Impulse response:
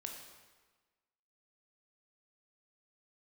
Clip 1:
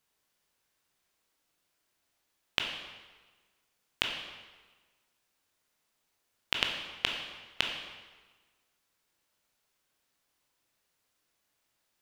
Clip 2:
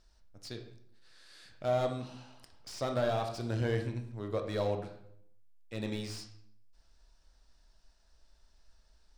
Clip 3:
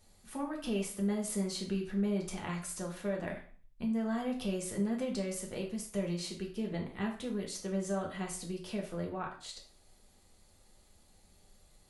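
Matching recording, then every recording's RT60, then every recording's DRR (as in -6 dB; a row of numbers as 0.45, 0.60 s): 1; 1.3, 0.70, 0.45 s; 1.5, 4.5, -1.0 dB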